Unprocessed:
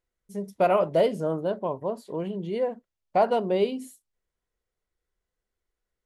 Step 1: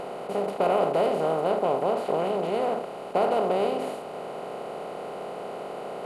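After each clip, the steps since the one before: spectral levelling over time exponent 0.2; trim -8 dB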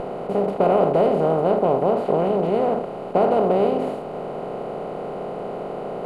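tilt EQ -3 dB/octave; trim +3 dB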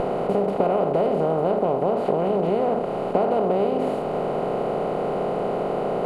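compression 5:1, threshold -24 dBFS, peak gain reduction 10.5 dB; trim +5.5 dB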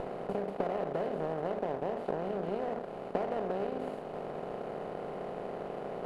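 power-law waveshaper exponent 1.4; trim -9 dB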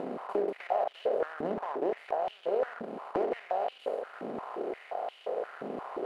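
step-sequenced high-pass 5.7 Hz 240–3000 Hz; trim -1 dB

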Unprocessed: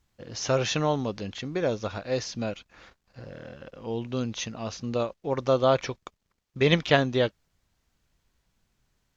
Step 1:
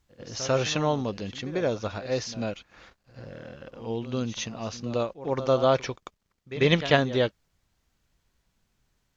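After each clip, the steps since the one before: pre-echo 95 ms -14 dB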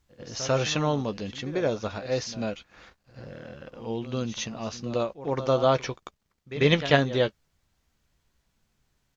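doubling 14 ms -11.5 dB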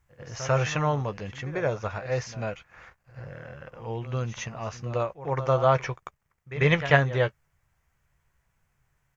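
graphic EQ 125/250/1000/2000/4000 Hz +7/-11/+3/+6/-12 dB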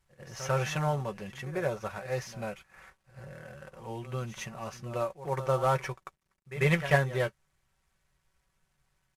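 CVSD coder 64 kbps; comb 5.3 ms, depth 52%; trim -5 dB

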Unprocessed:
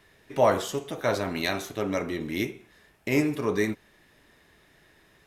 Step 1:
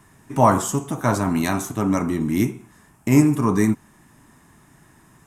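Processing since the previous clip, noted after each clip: graphic EQ 125/250/500/1000/2000/4000/8000 Hz +8/+8/-10/+9/-5/-11/+11 dB; trim +5 dB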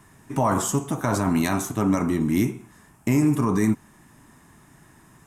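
peak limiter -11.5 dBFS, peak gain reduction 10 dB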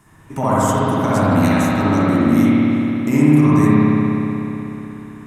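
spring tank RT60 3.6 s, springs 60 ms, chirp 25 ms, DRR -9 dB; trim -1 dB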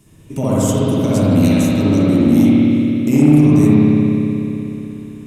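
high-order bell 1.2 kHz -14 dB; in parallel at -4 dB: overload inside the chain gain 11 dB; on the sum: trim -1 dB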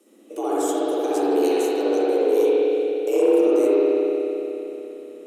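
frequency shift +190 Hz; trim -7.5 dB

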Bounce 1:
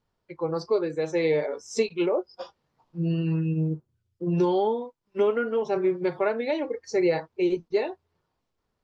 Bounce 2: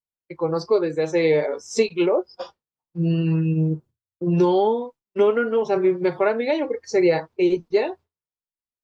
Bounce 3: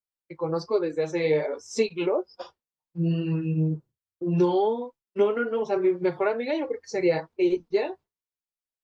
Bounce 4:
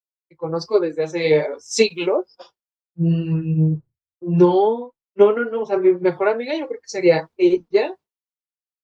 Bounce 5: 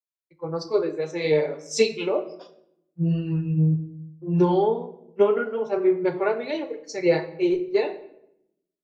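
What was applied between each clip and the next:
expander -42 dBFS; trim +5 dB
flange 1.2 Hz, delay 1.8 ms, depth 6.1 ms, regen -36%; trim -1 dB
three bands expanded up and down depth 100%; trim +5.5 dB
simulated room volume 200 m³, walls mixed, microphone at 0.36 m; trim -5.5 dB

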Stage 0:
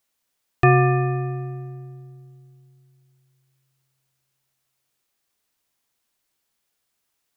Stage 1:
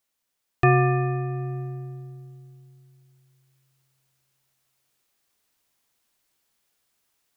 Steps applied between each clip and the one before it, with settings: level rider gain up to 6 dB; trim -3.5 dB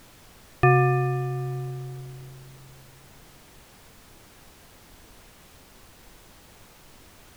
added noise pink -51 dBFS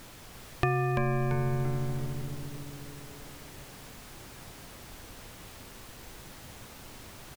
compression 4:1, threshold -29 dBFS, peak gain reduction 13 dB; on a send: frequency-shifting echo 339 ms, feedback 43%, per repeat -140 Hz, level -5 dB; on the sum: trim +2.5 dB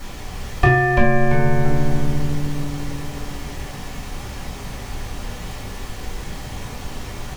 in parallel at -7 dB: hard clipper -24.5 dBFS, distortion -14 dB; on the sum: reverberation RT60 0.35 s, pre-delay 3 ms, DRR -7.5 dB

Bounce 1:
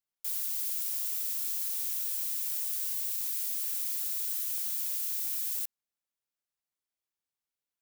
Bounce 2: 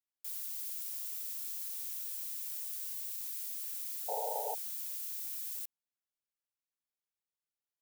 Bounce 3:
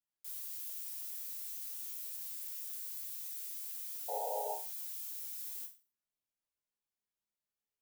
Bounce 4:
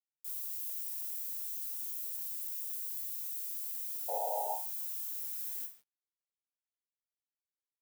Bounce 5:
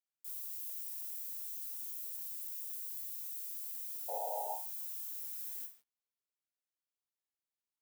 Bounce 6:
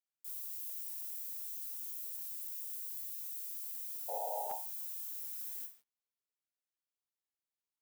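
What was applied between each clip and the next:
painted sound noise, 4.08–4.55 s, 420–940 Hz -30 dBFS; trim -7.5 dB
bass shelf 450 Hz +6 dB; chord resonator C#2 fifth, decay 0.34 s; trim +8 dB
treble shelf 7.1 kHz +8 dB; high-pass sweep 260 Hz -> 2 kHz, 2.91–6.00 s; bit crusher 10-bit; trim -3.5 dB
high-pass 130 Hz 6 dB/octave; trim -3.5 dB
crackling interface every 0.45 s, samples 512, repeat, from 0.89 s

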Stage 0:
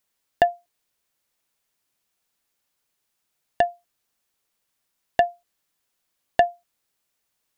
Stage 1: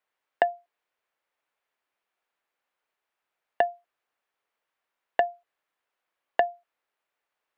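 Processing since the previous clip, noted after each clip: three-band isolator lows -17 dB, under 380 Hz, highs -19 dB, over 2.7 kHz; compression, threshold -20 dBFS, peak gain reduction 7.5 dB; trim +1.5 dB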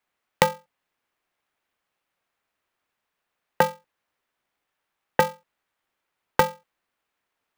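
polarity switched at an audio rate 180 Hz; trim +3.5 dB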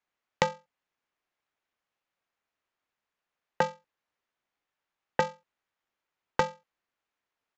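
resampled via 16 kHz; trim -6.5 dB

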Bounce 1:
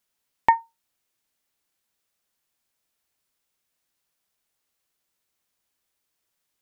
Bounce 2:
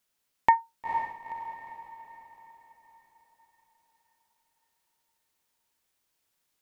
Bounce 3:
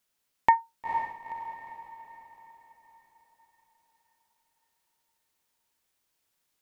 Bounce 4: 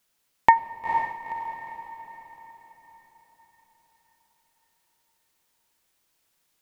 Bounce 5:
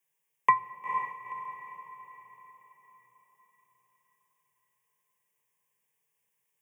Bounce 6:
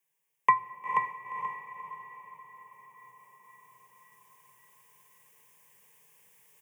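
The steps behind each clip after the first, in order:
peak limiter -8 dBFS, peak gain reduction 3 dB; echo that smears into a reverb 479 ms, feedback 47%, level -7 dB
no audible change
reverberation, pre-delay 6 ms, DRR 14.5 dB; trim +5.5 dB
static phaser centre 830 Hz, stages 8; frequency shift +120 Hz; trim -5.5 dB
reverse; upward compressor, threshold -48 dBFS; reverse; feedback delay 482 ms, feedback 24%, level -5 dB

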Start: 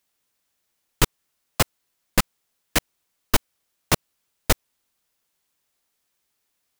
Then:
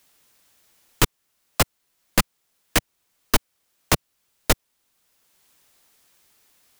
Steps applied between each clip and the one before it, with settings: three bands compressed up and down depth 40%; trim +1.5 dB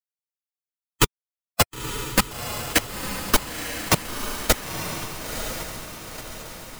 expander on every frequency bin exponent 2; bass shelf 140 Hz -3.5 dB; on a send: echo that smears into a reverb 969 ms, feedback 51%, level -6 dB; on the sum: trim +4 dB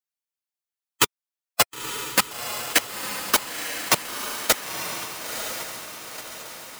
high-pass 620 Hz 6 dB/octave; trim +1.5 dB

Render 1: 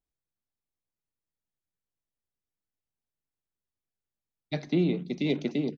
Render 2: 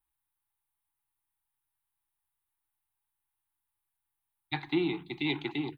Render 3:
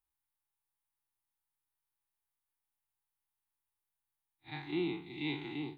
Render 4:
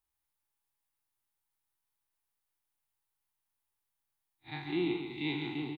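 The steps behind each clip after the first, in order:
FFT filter 130 Hz 0 dB, 210 Hz -21 dB, 330 Hz +1 dB, 580 Hz -26 dB, 830 Hz +13 dB, 1.3 kHz +6 dB, 3.9 kHz +3 dB, 5.7 kHz -26 dB, 9.1 kHz +11 dB
spectral blur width 93 ms; trim -3.5 dB
delay 138 ms -6 dB; trim +2 dB

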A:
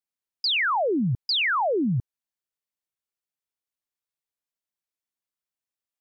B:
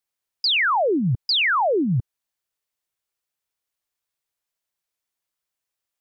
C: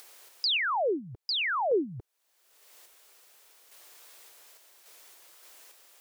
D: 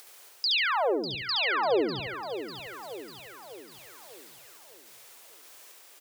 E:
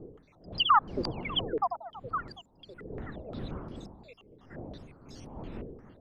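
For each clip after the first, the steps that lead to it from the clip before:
peaking EQ 230 Hz -6.5 dB 0.9 oct; peak limiter -23.5 dBFS, peak gain reduction 3.5 dB; trim +7 dB
resonant low shelf 270 Hz -13.5 dB, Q 1.5; upward compressor, threshold -23 dBFS; random-step tremolo; trim -3 dB
reverse; upward compressor, threshold -50 dBFS; reverse; feedback delay 70 ms, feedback 40%, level -4 dB; bit-crushed delay 597 ms, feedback 55%, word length 10-bit, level -10.5 dB
random holes in the spectrogram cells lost 81%; wind noise 270 Hz -44 dBFS; step-sequenced low-pass 5.7 Hz 460–5100 Hz

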